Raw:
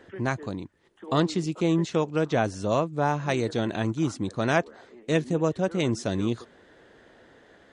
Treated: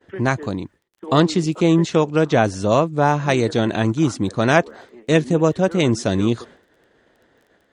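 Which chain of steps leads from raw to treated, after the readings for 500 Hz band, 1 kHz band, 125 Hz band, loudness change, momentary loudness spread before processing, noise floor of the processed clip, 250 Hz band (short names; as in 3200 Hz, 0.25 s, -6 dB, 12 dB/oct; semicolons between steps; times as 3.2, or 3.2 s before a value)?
+8.0 dB, +8.0 dB, +8.0 dB, +8.0 dB, 8 LU, -62 dBFS, +8.0 dB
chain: expander -45 dBFS; crackle 12/s -53 dBFS; gain +8 dB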